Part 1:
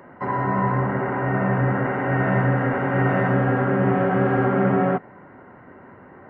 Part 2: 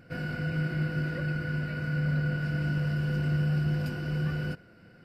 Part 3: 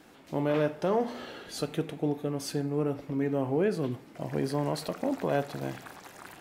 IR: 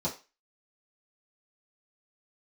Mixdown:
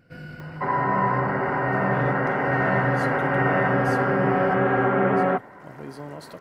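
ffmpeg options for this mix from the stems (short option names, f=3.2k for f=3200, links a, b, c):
-filter_complex "[0:a]equalizer=f=130:w=0.41:g=-8,acompressor=mode=upward:threshold=-47dB:ratio=2.5,adelay=400,volume=2.5dB[a];[1:a]alimiter=level_in=0.5dB:limit=-24dB:level=0:latency=1:release=286,volume=-0.5dB,volume=-5dB[b];[2:a]adelay=1450,volume=-8dB[c];[a][b][c]amix=inputs=3:normalize=0"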